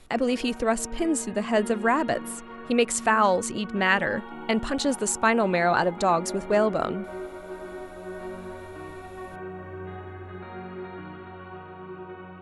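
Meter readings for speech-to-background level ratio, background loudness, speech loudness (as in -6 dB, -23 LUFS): 14.0 dB, -38.5 LUFS, -24.5 LUFS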